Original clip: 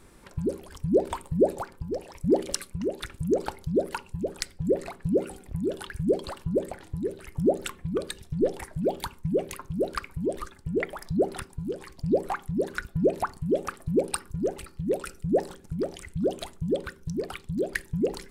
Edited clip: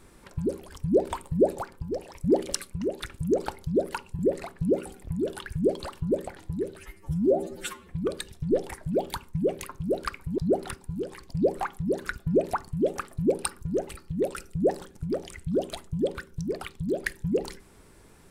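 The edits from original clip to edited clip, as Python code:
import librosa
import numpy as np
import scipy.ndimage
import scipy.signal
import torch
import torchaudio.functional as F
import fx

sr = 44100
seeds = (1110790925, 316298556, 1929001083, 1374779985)

y = fx.edit(x, sr, fx.cut(start_s=4.19, length_s=0.44),
    fx.stretch_span(start_s=7.23, length_s=0.54, factor=2.0),
    fx.cut(start_s=10.28, length_s=0.79), tone=tone)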